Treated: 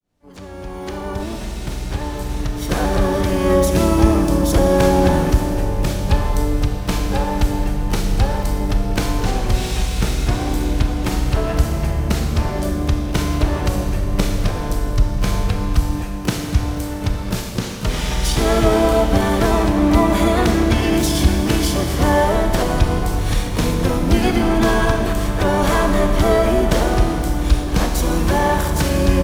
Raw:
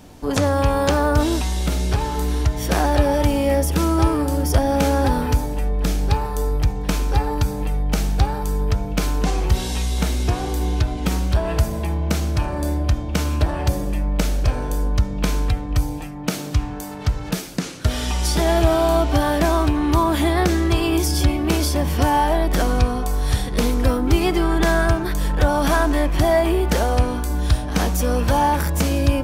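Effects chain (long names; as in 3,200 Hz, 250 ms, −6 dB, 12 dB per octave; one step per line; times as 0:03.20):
fade in at the beginning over 3.68 s
pitch-shifted copies added −7 semitones −1 dB, +12 semitones −11 dB
four-comb reverb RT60 2.7 s, combs from 27 ms, DRR 4 dB
level −1.5 dB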